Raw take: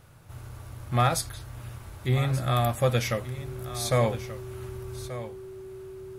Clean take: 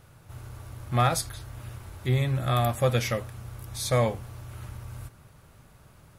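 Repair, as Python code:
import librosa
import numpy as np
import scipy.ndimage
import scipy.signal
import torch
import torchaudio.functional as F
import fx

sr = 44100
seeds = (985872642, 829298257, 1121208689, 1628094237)

y = fx.notch(x, sr, hz=380.0, q=30.0)
y = fx.fix_echo_inverse(y, sr, delay_ms=1182, level_db=-13.5)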